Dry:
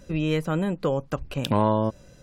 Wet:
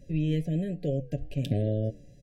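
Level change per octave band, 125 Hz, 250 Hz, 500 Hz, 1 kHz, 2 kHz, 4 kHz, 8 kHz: 0.0 dB, −4.5 dB, −7.5 dB, −24.0 dB, −13.0 dB, −10.0 dB, below −10 dB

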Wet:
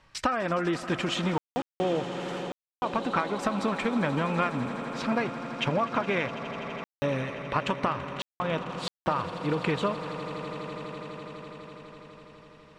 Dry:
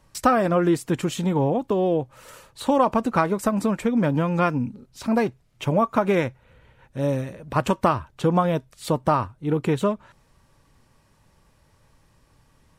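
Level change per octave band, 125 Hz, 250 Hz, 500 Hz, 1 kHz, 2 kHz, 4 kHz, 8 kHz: −8.0, −7.5, −7.0, −5.5, 0.0, +2.5, −7.0 decibels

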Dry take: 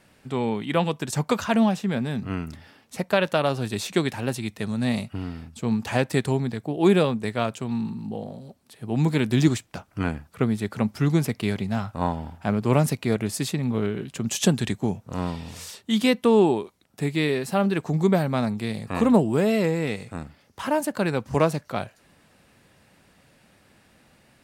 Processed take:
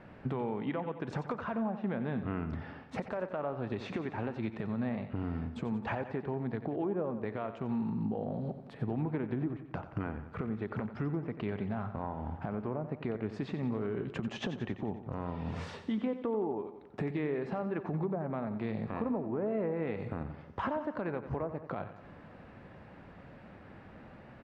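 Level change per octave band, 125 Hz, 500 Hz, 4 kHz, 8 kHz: −11.5 dB, −11.0 dB, −20.0 dB, below −30 dB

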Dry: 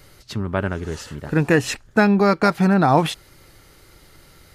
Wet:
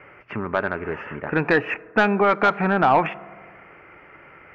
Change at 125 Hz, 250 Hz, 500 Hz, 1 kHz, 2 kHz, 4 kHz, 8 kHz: −8.5 dB, −6.5 dB, −1.5 dB, +1.0 dB, +2.0 dB, −6.0 dB, below −20 dB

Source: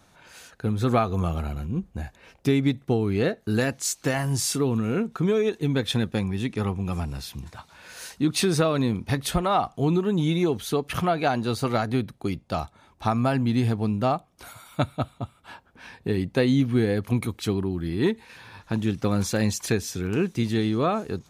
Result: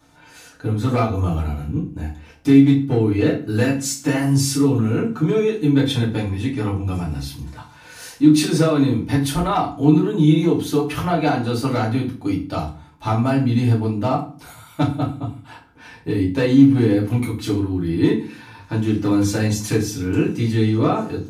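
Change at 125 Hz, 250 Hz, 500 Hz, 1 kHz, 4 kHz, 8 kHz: +6.5, +8.0, +3.5, +3.0, +2.5, +2.5 decibels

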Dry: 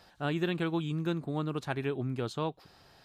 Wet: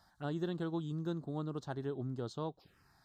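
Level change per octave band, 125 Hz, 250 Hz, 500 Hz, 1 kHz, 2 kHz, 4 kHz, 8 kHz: −5.5 dB, −5.5 dB, −6.0 dB, −7.5 dB, −13.0 dB, −10.5 dB, can't be measured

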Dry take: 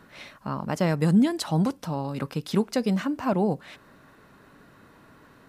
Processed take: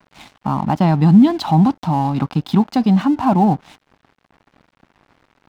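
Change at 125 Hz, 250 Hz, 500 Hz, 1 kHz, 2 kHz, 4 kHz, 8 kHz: +11.0 dB, +10.5 dB, +3.0 dB, +13.5 dB, +2.5 dB, +5.0 dB, can't be measured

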